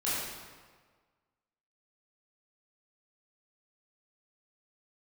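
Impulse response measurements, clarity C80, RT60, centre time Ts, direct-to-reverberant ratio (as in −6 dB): 0.0 dB, 1.5 s, 108 ms, −10.0 dB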